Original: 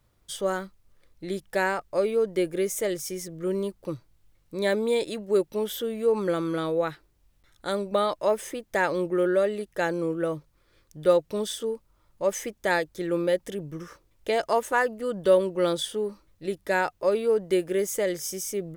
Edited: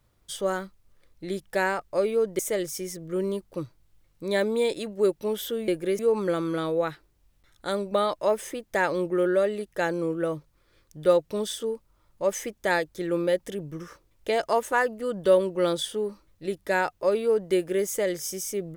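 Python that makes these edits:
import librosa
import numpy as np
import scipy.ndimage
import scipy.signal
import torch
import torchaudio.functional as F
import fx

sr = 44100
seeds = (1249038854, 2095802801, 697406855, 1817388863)

y = fx.edit(x, sr, fx.move(start_s=2.39, length_s=0.31, to_s=5.99), tone=tone)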